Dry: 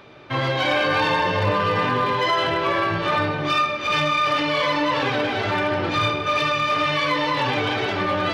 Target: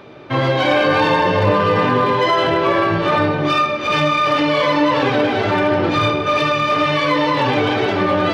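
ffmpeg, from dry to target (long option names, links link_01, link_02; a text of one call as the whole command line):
ffmpeg -i in.wav -af "equalizer=frequency=310:width=0.38:gain=7,volume=1.5dB" out.wav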